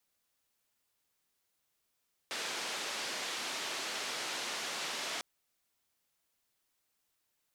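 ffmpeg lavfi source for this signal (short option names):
-f lavfi -i "anoisesrc=c=white:d=2.9:r=44100:seed=1,highpass=f=290,lowpass=f=5100,volume=-27.4dB"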